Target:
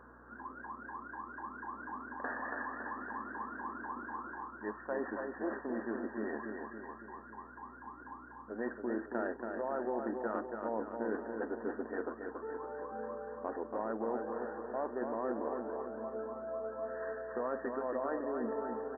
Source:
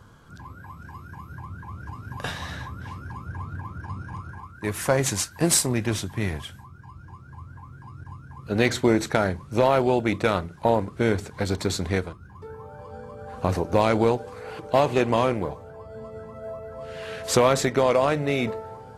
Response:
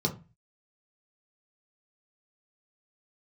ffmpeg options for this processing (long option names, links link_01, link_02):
-af "afftfilt=real='re*between(b*sr/4096,210,1900)':imag='im*between(b*sr/4096,210,1900)':win_size=4096:overlap=0.75,areverse,acompressor=threshold=-36dB:ratio=4,areverse,aecho=1:1:280|560|840|1120|1400|1680|1960:0.562|0.309|0.17|0.0936|0.0515|0.0283|0.0156,aeval=exprs='val(0)+0.000794*(sin(2*PI*60*n/s)+sin(2*PI*2*60*n/s)/2+sin(2*PI*3*60*n/s)/3+sin(2*PI*4*60*n/s)/4+sin(2*PI*5*60*n/s)/5)':channel_layout=same,volume=-1dB"